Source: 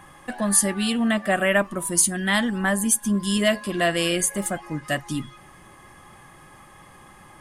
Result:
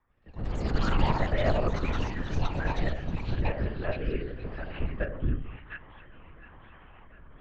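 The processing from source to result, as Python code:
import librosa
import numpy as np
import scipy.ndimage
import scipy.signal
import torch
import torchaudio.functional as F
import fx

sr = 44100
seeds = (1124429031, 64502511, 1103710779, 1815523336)

p1 = fx.tracing_dist(x, sr, depth_ms=0.021)
p2 = fx.doppler_pass(p1, sr, speed_mps=23, closest_m=2.6, pass_at_s=1.57)
p3 = fx.recorder_agc(p2, sr, target_db=-18.0, rise_db_per_s=14.0, max_gain_db=30)
p4 = scipy.signal.sosfilt(scipy.signal.butter(2, 2100.0, 'lowpass', fs=sr, output='sos'), p3)
p5 = p4 + fx.echo_split(p4, sr, split_hz=1200.0, low_ms=82, high_ms=705, feedback_pct=52, wet_db=-5.5, dry=0)
p6 = fx.lpc_vocoder(p5, sr, seeds[0], excitation='whisper', order=10)
p7 = fx.low_shelf(p6, sr, hz=62.0, db=10.0)
p8 = fx.level_steps(p7, sr, step_db=13)
p9 = p7 + (p8 * 10.0 ** (2.0 / 20.0))
p10 = fx.rotary(p9, sr, hz=1.0)
p11 = fx.echo_pitch(p10, sr, ms=110, semitones=7, count=2, db_per_echo=-3.0)
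y = p11 * 10.0 ** (-6.0 / 20.0)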